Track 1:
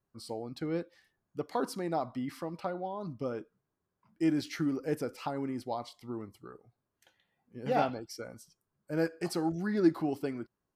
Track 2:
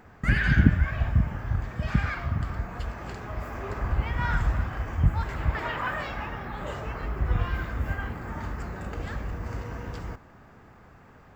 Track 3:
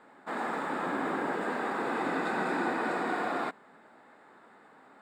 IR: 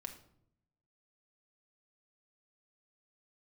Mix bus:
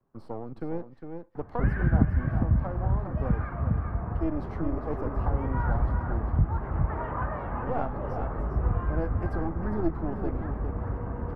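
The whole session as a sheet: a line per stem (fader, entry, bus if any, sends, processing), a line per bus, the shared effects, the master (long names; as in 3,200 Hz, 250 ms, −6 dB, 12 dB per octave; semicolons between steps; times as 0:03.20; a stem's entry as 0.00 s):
+1.5 dB, 0.00 s, no send, echo send −9 dB, gain on one half-wave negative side −12 dB
−0.5 dB, 1.35 s, no send, echo send −8 dB, high-shelf EQ 2,300 Hz −11 dB
muted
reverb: not used
echo: single-tap delay 405 ms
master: drawn EQ curve 1,100 Hz 0 dB, 3,400 Hz −19 dB, 7,800 Hz −27 dB; multiband upward and downward compressor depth 40%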